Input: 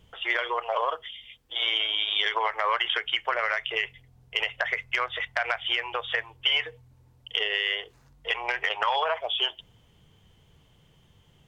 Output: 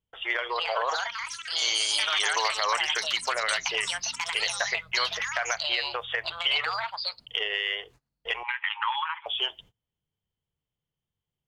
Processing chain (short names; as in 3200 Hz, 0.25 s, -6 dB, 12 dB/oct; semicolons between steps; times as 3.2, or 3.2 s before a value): gate -49 dBFS, range -27 dB; echoes that change speed 0.403 s, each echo +6 st, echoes 3; 8.43–9.26 brick-wall FIR band-pass 820–4200 Hz; gain -2 dB